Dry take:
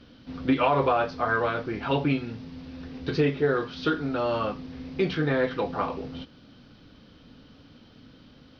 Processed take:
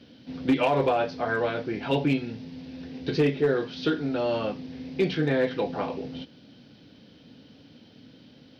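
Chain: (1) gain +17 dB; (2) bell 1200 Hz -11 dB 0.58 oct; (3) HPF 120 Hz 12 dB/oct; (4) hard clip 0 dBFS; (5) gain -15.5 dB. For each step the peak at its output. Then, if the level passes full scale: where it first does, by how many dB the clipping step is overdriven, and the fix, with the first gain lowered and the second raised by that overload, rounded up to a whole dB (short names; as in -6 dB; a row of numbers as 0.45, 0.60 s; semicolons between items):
+6.0, +4.5, +4.5, 0.0, -15.5 dBFS; step 1, 4.5 dB; step 1 +12 dB, step 5 -10.5 dB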